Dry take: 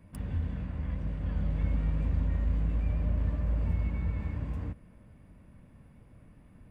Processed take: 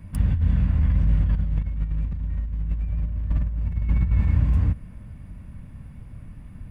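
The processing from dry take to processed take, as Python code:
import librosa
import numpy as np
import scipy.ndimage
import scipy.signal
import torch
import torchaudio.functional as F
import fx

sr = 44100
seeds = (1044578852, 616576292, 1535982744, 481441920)

y = fx.low_shelf(x, sr, hz=230.0, db=8.0)
y = fx.over_compress(y, sr, threshold_db=-25.0, ratio=-0.5)
y = fx.peak_eq(y, sr, hz=420.0, db=-8.0, octaves=1.7)
y = y * 10.0 ** (5.5 / 20.0)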